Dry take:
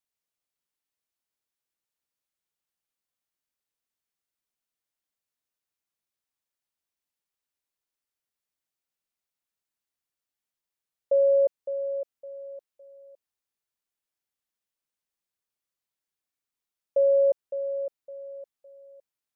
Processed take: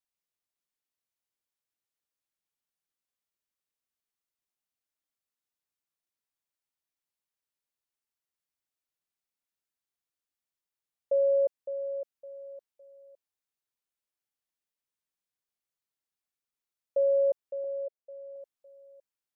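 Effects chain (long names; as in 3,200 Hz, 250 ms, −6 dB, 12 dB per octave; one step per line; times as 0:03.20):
0:17.64–0:18.36: flat-topped band-pass 530 Hz, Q 1.8
level −4 dB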